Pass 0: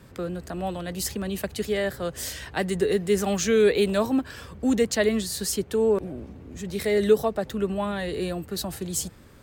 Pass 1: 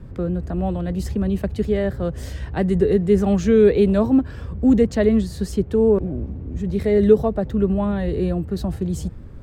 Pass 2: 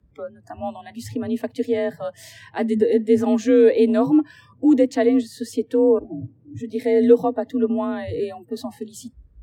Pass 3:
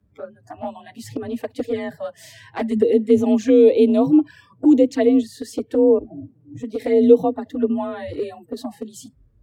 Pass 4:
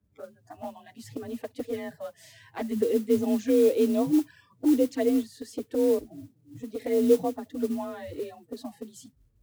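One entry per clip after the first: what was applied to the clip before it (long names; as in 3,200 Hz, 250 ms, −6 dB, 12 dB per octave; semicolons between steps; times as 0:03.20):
spectral tilt −4 dB per octave
noise reduction from a noise print of the clip's start 25 dB; frequency shifter +40 Hz
flanger swept by the level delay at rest 10.1 ms, full sweep at −14 dBFS; level +2.5 dB
noise that follows the level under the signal 23 dB; level −8.5 dB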